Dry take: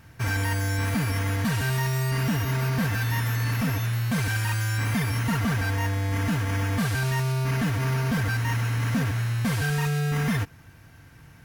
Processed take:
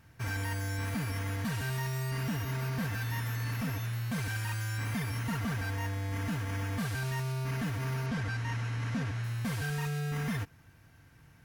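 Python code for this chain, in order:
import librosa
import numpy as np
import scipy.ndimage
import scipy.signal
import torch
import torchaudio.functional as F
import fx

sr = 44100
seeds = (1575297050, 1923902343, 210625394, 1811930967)

y = fx.lowpass(x, sr, hz=7100.0, slope=12, at=(8.06, 9.24))
y = F.gain(torch.from_numpy(y), -8.5).numpy()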